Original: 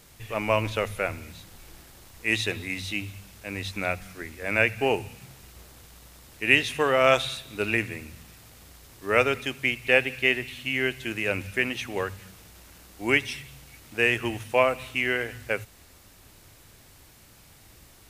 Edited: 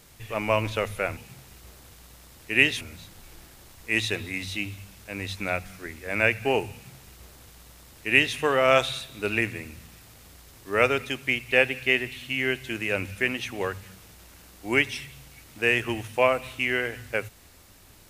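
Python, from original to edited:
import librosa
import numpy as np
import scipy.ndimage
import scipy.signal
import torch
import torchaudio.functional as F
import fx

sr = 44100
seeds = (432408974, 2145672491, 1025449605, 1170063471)

y = fx.edit(x, sr, fx.duplicate(start_s=5.09, length_s=1.64, to_s=1.17), tone=tone)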